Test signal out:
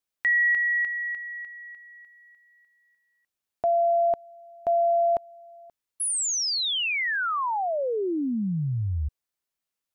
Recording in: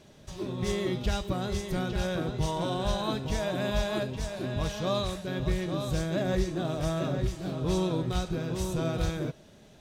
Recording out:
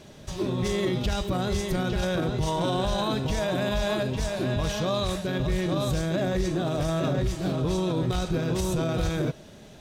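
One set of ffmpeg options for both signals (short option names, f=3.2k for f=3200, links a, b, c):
-af "alimiter=level_in=1dB:limit=-24dB:level=0:latency=1:release=20,volume=-1dB,volume=7dB"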